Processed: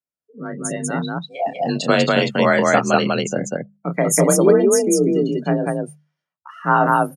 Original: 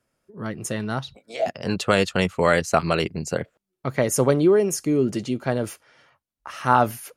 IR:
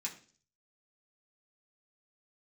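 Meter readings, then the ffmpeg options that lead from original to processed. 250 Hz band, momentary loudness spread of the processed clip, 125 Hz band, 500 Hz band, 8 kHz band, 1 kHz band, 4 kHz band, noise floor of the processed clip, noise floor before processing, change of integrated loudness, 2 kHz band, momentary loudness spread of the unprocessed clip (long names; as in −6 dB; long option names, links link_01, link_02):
+5.0 dB, 14 LU, +2.5 dB, +4.5 dB, +8.0 dB, +4.5 dB, +4.5 dB, below −85 dBFS, −85 dBFS, +4.5 dB, +5.0 dB, 15 LU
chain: -af "afftdn=noise_reduction=29:noise_floor=-31,afreqshift=39,bass=frequency=250:gain=2,treble=frequency=4000:gain=6,bandreject=frequency=50:width_type=h:width=6,bandreject=frequency=100:width_type=h:width=6,bandreject=frequency=150:width_type=h:width=6,bandreject=frequency=200:width_type=h:width=6,aecho=1:1:29.15|195.3:0.398|0.891,volume=1.5dB"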